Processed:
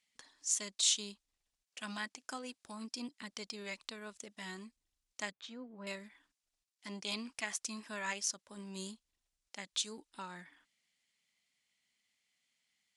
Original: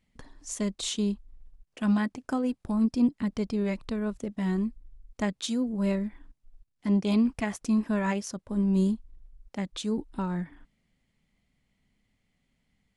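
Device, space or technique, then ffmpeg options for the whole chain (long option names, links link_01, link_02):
piezo pickup straight into a mixer: -filter_complex "[0:a]asettb=1/sr,asplit=3[link_01][link_02][link_03];[link_01]atrim=end=5.314[link_04];[link_02]atrim=start=5.31:end=5.87,asetpts=PTS-STARTPTS,afade=type=in:duration=0.004:curve=qsin,afade=type=out:start_time=0.556:duration=0.004:curve=qsin,lowpass=1500[link_05];[link_03]atrim=start=5.866[link_06];[link_04][link_05]acrossfade=duration=0.004:curve1=hsin:curve2=qsin[link_07];[link_07][link_06]acrossfade=duration=0.004:curve1=qsin:curve2=hsin,lowpass=7000,aderivative,volume=8dB"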